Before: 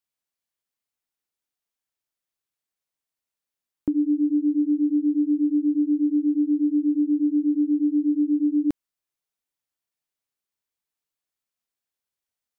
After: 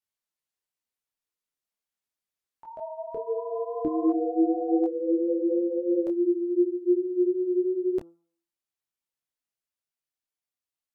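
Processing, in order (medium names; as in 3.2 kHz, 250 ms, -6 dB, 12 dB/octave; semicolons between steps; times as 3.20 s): gliding tape speed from 93% -> 137%; de-hum 168.9 Hz, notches 8; ever faster or slower copies 424 ms, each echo +6 st, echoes 3, each echo -6 dB; detune thickener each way 15 cents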